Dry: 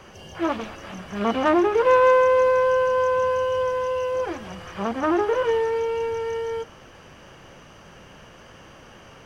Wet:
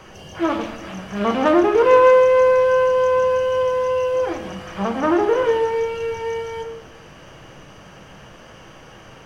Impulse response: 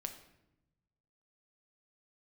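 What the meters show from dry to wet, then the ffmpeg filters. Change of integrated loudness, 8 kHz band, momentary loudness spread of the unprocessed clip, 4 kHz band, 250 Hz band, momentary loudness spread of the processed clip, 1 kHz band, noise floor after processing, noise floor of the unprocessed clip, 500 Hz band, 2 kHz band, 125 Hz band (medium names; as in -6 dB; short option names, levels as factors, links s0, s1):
+4.0 dB, no reading, 17 LU, +3.0 dB, +4.5 dB, 17 LU, +2.5 dB, -44 dBFS, -47 dBFS, +4.5 dB, +2.0 dB, +4.5 dB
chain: -filter_complex "[1:a]atrim=start_sample=2205[s0];[0:a][s0]afir=irnorm=-1:irlink=0,volume=1.88"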